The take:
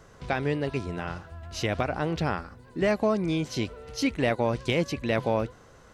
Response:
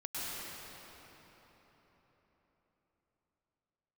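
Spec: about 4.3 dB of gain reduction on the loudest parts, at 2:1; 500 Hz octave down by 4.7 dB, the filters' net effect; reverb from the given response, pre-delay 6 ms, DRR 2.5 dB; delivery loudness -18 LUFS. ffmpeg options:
-filter_complex "[0:a]equalizer=f=500:t=o:g=-6,acompressor=threshold=0.0316:ratio=2,asplit=2[s0][s1];[1:a]atrim=start_sample=2205,adelay=6[s2];[s1][s2]afir=irnorm=-1:irlink=0,volume=0.473[s3];[s0][s3]amix=inputs=2:normalize=0,volume=5.01"

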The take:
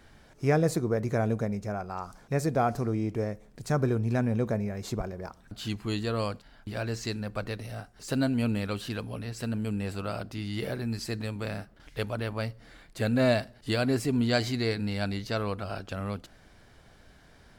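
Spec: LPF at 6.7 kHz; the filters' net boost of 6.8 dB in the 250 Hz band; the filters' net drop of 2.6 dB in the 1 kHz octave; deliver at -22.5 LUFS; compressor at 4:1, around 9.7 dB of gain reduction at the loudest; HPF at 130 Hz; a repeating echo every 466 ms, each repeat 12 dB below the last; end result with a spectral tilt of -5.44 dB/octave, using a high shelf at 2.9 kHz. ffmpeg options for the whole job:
-af "highpass=130,lowpass=6700,equalizer=f=250:t=o:g=8.5,equalizer=f=1000:t=o:g=-6,highshelf=f=2900:g=7,acompressor=threshold=0.0398:ratio=4,aecho=1:1:466|932|1398:0.251|0.0628|0.0157,volume=3.35"

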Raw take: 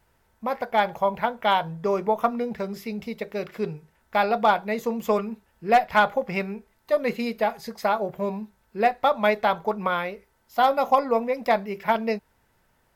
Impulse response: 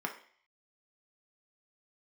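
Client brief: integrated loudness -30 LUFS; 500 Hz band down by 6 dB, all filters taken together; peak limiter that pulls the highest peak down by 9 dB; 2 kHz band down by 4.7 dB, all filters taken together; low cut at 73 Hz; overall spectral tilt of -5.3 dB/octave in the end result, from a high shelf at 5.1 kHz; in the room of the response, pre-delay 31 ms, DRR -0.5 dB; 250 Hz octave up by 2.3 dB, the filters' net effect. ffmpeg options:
-filter_complex "[0:a]highpass=73,equalizer=f=250:t=o:g=4.5,equalizer=f=500:t=o:g=-8.5,equalizer=f=2000:t=o:g=-6.5,highshelf=f=5100:g=3,alimiter=limit=0.1:level=0:latency=1,asplit=2[s0][s1];[1:a]atrim=start_sample=2205,adelay=31[s2];[s1][s2]afir=irnorm=-1:irlink=0,volume=0.668[s3];[s0][s3]amix=inputs=2:normalize=0,volume=0.708"

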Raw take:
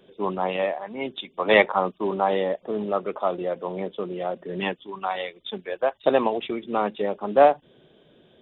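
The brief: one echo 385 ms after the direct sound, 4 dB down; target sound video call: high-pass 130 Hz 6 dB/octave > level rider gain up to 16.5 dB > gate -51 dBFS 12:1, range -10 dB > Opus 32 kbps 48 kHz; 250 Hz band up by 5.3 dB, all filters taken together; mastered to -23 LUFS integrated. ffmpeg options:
-af "highpass=f=130:p=1,equalizer=f=250:t=o:g=8.5,aecho=1:1:385:0.631,dynaudnorm=m=6.68,agate=range=0.316:threshold=0.00282:ratio=12,volume=0.944" -ar 48000 -c:a libopus -b:a 32k

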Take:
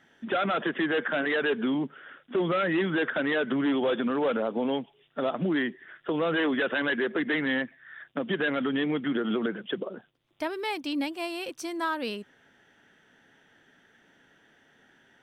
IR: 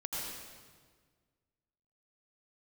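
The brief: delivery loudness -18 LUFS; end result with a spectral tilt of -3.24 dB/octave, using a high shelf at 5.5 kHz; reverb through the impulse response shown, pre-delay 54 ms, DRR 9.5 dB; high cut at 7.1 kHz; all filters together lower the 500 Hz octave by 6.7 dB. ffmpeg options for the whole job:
-filter_complex "[0:a]lowpass=7100,equalizer=f=500:t=o:g=-8.5,highshelf=f=5500:g=-7,asplit=2[s0][s1];[1:a]atrim=start_sample=2205,adelay=54[s2];[s1][s2]afir=irnorm=-1:irlink=0,volume=0.237[s3];[s0][s3]amix=inputs=2:normalize=0,volume=4.47"

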